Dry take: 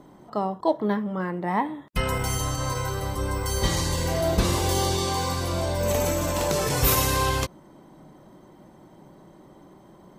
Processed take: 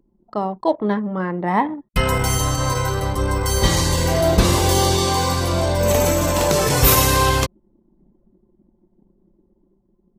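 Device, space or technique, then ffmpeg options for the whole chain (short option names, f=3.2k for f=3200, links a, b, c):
voice memo with heavy noise removal: -af "anlmdn=2.51,dynaudnorm=f=550:g=5:m=4dB,volume=3.5dB"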